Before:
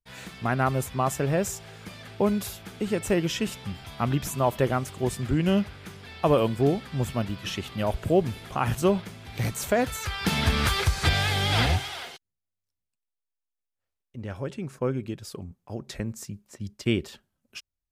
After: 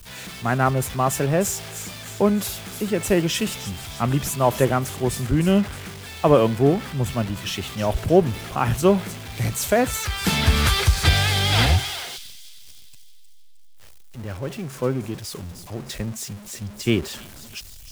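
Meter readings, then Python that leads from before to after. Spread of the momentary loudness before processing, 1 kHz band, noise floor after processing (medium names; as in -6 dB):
17 LU, +4.5 dB, -41 dBFS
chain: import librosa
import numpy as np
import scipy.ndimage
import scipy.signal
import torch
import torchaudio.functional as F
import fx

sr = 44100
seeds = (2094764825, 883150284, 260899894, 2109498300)

y = x + 0.5 * 10.0 ** (-34.0 / 20.0) * np.sign(x)
y = fx.echo_wet_highpass(y, sr, ms=310, feedback_pct=57, hz=4700.0, wet_db=-6.0)
y = fx.band_widen(y, sr, depth_pct=40)
y = y * librosa.db_to_amplitude(3.0)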